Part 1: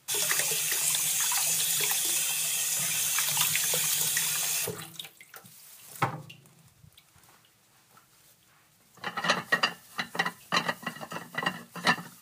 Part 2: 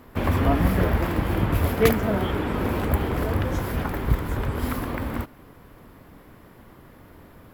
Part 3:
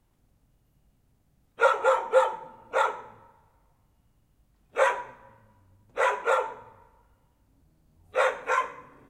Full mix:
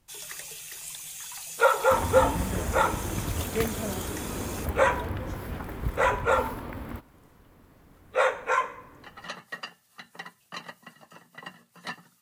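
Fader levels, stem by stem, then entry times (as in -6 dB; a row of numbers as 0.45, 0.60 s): -12.5, -9.0, +0.5 dB; 0.00, 1.75, 0.00 s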